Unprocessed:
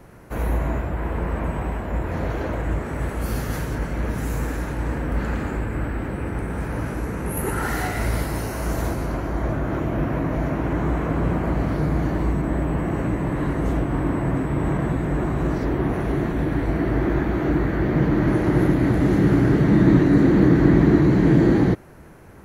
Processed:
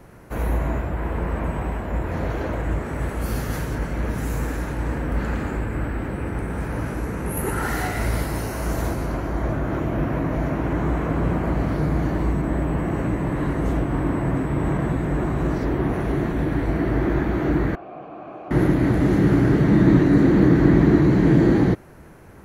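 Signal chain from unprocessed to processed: 17.75–18.51 s: vowel filter a

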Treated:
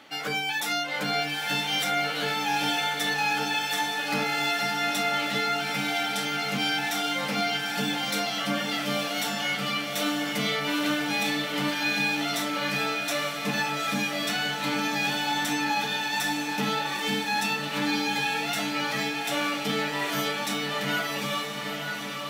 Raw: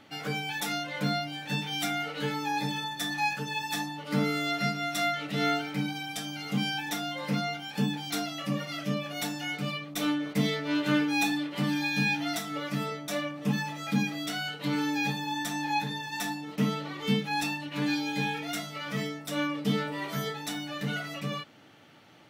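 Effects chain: high-pass 540 Hz 6 dB/octave; peak limiter -26 dBFS, peak gain reduction 10.5 dB; echo that smears into a reverb 885 ms, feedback 60%, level -4 dB; trim +6.5 dB

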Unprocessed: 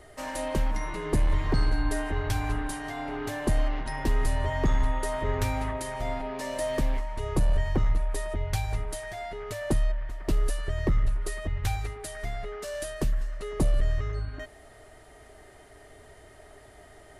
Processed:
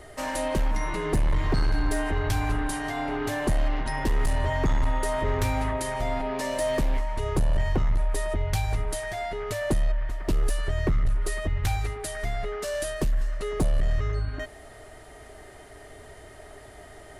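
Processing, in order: in parallel at -2 dB: peak limiter -26 dBFS, peak gain reduction 10.5 dB; on the sum: hard clipper -18.5 dBFS, distortion -17 dB

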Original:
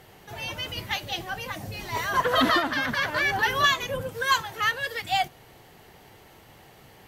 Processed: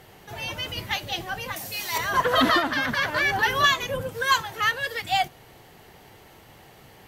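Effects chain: 1.56–1.98 s: tilt EQ +3.5 dB/octave; trim +1.5 dB

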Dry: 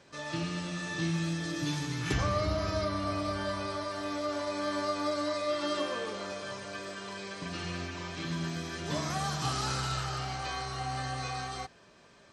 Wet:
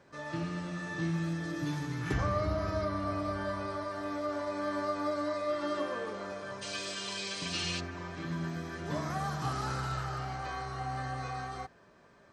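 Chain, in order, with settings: high-order bell 4.9 kHz -8.5 dB 2.3 oct, from 6.61 s +9.5 dB, from 7.79 s -9 dB; trim -1 dB

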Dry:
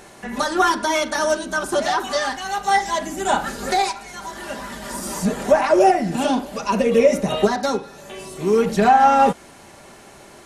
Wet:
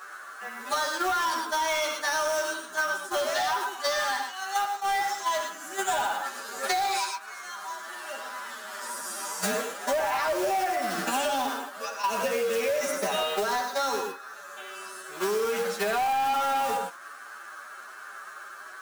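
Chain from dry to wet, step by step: band noise 1.1–1.7 kHz -38 dBFS; in parallel at -0.5 dB: peak limiter -13 dBFS, peak gain reduction 9.5 dB; on the sum: gate -17 dBFS, range -18 dB; short-mantissa float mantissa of 2-bit; high-pass 620 Hz 12 dB/octave; time stretch by phase-locked vocoder 1.8×; on a send at -8 dB: reverberation, pre-delay 3 ms; on the sum: saturation -12.5 dBFS, distortion -12 dB; compression 12:1, threshold -32 dBFS, peak gain reduction 17.5 dB; attacks held to a fixed rise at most 300 dB/s; trim +7 dB

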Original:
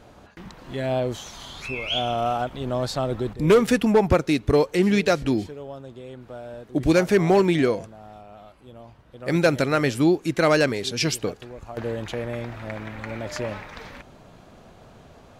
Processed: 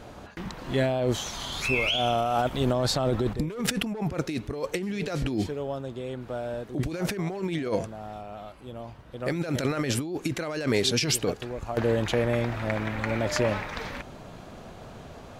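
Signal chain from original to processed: 1.52–2.73 s: treble shelf 6.7 kHz +7.5 dB; compressor with a negative ratio -27 dBFS, ratio -1

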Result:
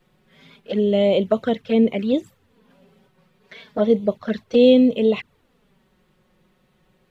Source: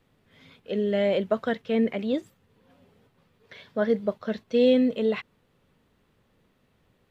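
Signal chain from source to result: touch-sensitive flanger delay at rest 5.6 ms, full sweep at -22 dBFS; trim +7.5 dB

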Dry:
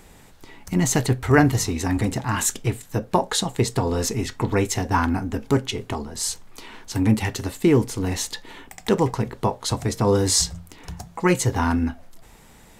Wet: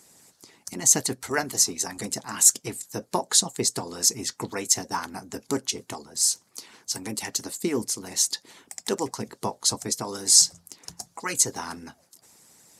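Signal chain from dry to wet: harmonic-percussive split harmonic -16 dB; high-pass 150 Hz 12 dB/octave; high-order bell 7.3 kHz +13 dB; trim -5.5 dB

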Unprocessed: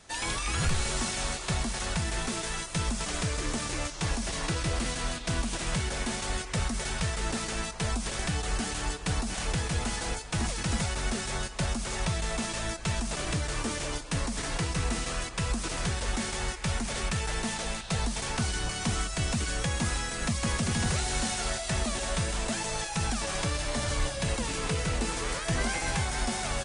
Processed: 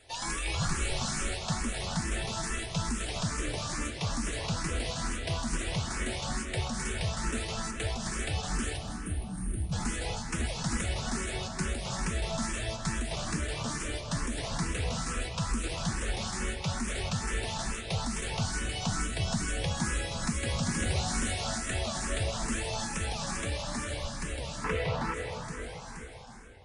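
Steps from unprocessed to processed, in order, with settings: fade out at the end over 3.80 s; 8.77–9.72 s: time-frequency box 390–8400 Hz -22 dB; 24.64–25.14 s: graphic EQ 125/500/1000/2000/4000/8000 Hz +9/+10/+10/+8/+4/-11 dB; algorithmic reverb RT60 3.7 s, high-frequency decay 0.55×, pre-delay 115 ms, DRR 4.5 dB; barber-pole phaser +2.3 Hz

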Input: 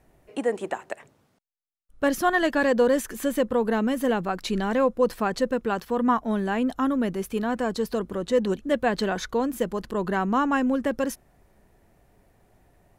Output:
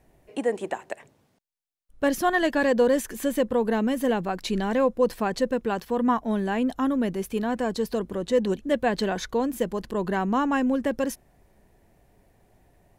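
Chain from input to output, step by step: peaking EQ 1.3 kHz -5.5 dB 0.38 oct

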